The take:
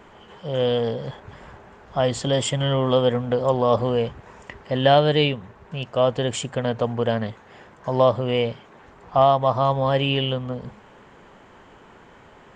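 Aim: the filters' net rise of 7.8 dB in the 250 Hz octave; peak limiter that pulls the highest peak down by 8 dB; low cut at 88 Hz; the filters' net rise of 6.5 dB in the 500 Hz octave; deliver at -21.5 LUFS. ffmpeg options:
-af "highpass=88,equalizer=f=250:t=o:g=7.5,equalizer=f=500:t=o:g=6,volume=-2dB,alimiter=limit=-10dB:level=0:latency=1"

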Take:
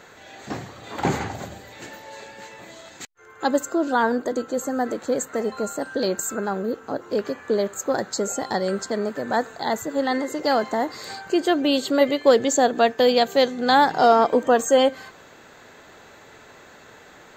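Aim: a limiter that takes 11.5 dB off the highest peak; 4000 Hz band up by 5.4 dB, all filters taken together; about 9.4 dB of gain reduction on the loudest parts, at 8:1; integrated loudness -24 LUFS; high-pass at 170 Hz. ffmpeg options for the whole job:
-af "highpass=170,equalizer=f=4k:t=o:g=6.5,acompressor=threshold=-20dB:ratio=8,volume=6.5dB,alimiter=limit=-13dB:level=0:latency=1"

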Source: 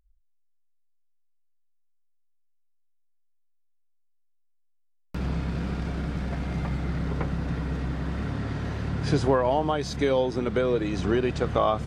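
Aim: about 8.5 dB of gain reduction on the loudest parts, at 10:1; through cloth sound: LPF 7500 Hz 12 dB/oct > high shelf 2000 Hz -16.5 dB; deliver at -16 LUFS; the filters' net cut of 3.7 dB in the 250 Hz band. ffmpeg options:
-af "equalizer=f=250:t=o:g=-5,acompressor=threshold=-27dB:ratio=10,lowpass=7.5k,highshelf=f=2k:g=-16.5,volume=18dB"

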